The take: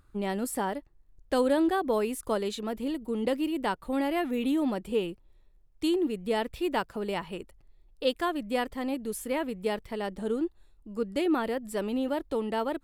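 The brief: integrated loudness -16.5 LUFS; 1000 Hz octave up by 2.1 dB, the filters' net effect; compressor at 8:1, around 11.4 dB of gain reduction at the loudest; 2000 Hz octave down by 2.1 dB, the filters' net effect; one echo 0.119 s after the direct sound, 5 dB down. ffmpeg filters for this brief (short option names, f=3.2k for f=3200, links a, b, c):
-af "equalizer=f=1k:t=o:g=3.5,equalizer=f=2k:t=o:g=-4,acompressor=threshold=-33dB:ratio=8,aecho=1:1:119:0.562,volume=20.5dB"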